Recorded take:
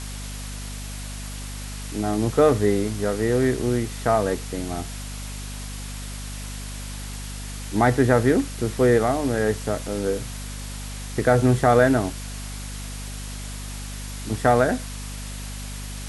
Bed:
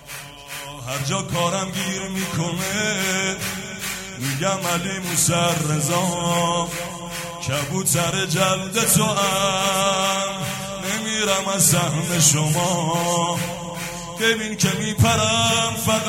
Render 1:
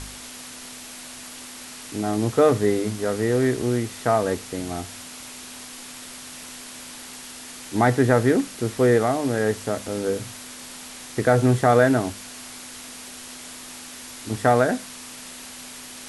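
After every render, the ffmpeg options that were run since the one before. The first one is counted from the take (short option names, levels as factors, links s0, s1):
-af "bandreject=f=50:t=h:w=4,bandreject=f=100:t=h:w=4,bandreject=f=150:t=h:w=4,bandreject=f=200:t=h:w=4"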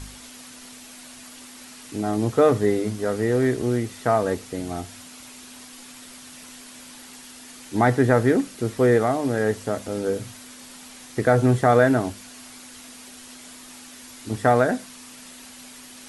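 -af "afftdn=nr=6:nf=-40"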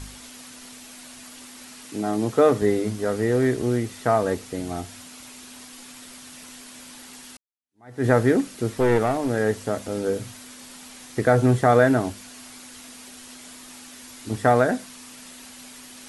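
-filter_complex "[0:a]asettb=1/sr,asplit=3[s0][s1][s2];[s0]atrim=end=1.854[s3];[s1]atrim=start=1.85:end=2.62,asetpts=PTS-STARTPTS,afade=t=in:d=0.004:c=qsin,afade=t=out:st=0.766:d=0.004:c=qsin,highpass=140[s4];[s2]atrim=start=2.616[s5];[s3][s4]acrossfade=d=0.004:c1=hsin:c2=qsin[s6];[s6][s5]acrossfade=d=0.004:c1=qsin:c2=hsin,asettb=1/sr,asplit=3[s7][s8][s9];[s7]atrim=end=8.684[s10];[s8]atrim=start=8.68:end=9.31,asetpts=PTS-STARTPTS,afade=t=in:d=0.004:c=qsin,afade=t=out:st=0.626:d=0.004:c=qsin,aeval=exprs='clip(val(0),-1,0.075)':c=same[s11];[s9]atrim=start=9.306[s12];[s10][s11]acrossfade=d=0.004:c1=hsin:c2=qsin[s13];[s13][s12]acrossfade=d=0.004:c1=qsin:c2=hsin,asplit=2[s14][s15];[s14]atrim=end=7.37,asetpts=PTS-STARTPTS,afade=t=out:st=7.366:d=0.004:c=hsin[s16];[s15]atrim=start=7.37,asetpts=PTS-STARTPTS,afade=t=in:d=0.69:c=exp[s17];[s16][s17]concat=n=2:v=0:a=1"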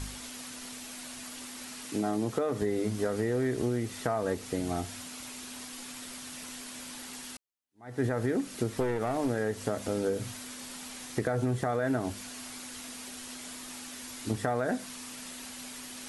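-af "alimiter=limit=0.211:level=0:latency=1:release=125,acompressor=threshold=0.0501:ratio=5"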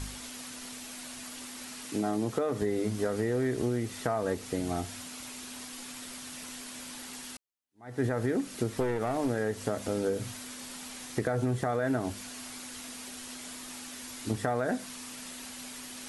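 -af anull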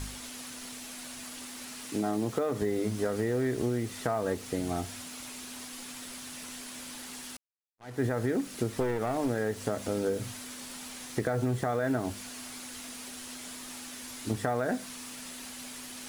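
-af "acrusher=bits=7:mix=0:aa=0.5"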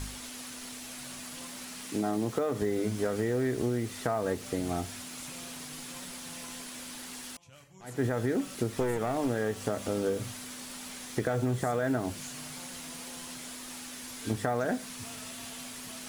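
-filter_complex "[1:a]volume=0.0251[s0];[0:a][s0]amix=inputs=2:normalize=0"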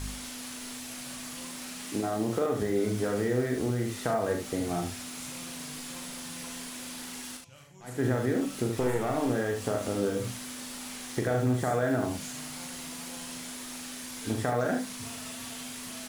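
-af "aecho=1:1:40|75:0.531|0.501"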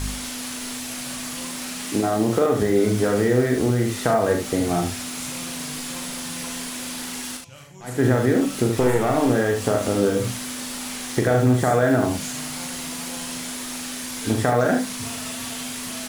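-af "volume=2.82"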